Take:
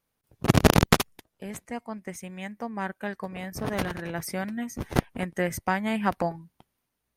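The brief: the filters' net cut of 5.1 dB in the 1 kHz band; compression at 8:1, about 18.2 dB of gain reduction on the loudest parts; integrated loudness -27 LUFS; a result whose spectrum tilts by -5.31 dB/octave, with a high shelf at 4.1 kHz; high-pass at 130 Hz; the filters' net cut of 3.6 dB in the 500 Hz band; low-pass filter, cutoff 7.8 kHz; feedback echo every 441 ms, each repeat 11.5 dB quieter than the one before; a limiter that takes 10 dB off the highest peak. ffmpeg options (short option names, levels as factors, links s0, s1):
-af "highpass=130,lowpass=7800,equalizer=f=500:t=o:g=-3,equalizer=f=1000:t=o:g=-5.5,highshelf=f=4100:g=-5,acompressor=threshold=0.0178:ratio=8,alimiter=level_in=1.78:limit=0.0631:level=0:latency=1,volume=0.562,aecho=1:1:441|882|1323:0.266|0.0718|0.0194,volume=5.62"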